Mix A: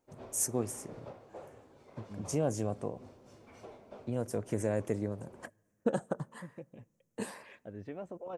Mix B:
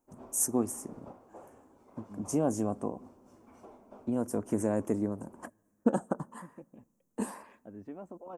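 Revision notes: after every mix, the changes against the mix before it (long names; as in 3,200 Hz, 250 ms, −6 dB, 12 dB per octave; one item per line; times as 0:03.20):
first voice +5.0 dB
master: add octave-band graphic EQ 125/250/500/1,000/2,000/4,000 Hz −11/+6/−6/+4/−8/−12 dB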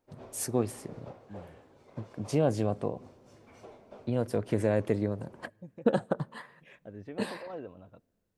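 first voice: add high shelf with overshoot 5,200 Hz −6.5 dB, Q 3
second voice: entry −0.80 s
master: add octave-band graphic EQ 125/250/500/1,000/2,000/4,000 Hz +11/−6/+6/−4/+8/+12 dB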